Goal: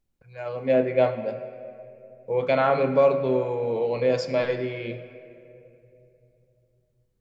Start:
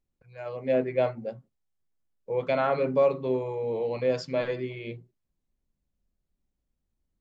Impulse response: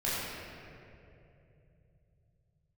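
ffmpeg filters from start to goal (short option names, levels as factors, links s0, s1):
-filter_complex "[0:a]asplit=2[s0][s1];[1:a]atrim=start_sample=2205,lowshelf=f=300:g=-11[s2];[s1][s2]afir=irnorm=-1:irlink=0,volume=0.15[s3];[s0][s3]amix=inputs=2:normalize=0,volume=1.5"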